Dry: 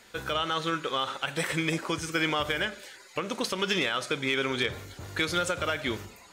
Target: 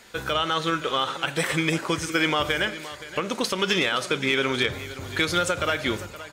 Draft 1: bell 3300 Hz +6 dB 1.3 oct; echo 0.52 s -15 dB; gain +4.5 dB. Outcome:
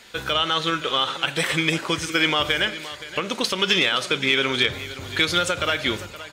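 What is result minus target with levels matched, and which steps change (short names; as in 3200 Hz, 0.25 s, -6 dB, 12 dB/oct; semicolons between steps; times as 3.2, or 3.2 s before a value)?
4000 Hz band +2.5 dB
remove: bell 3300 Hz +6 dB 1.3 oct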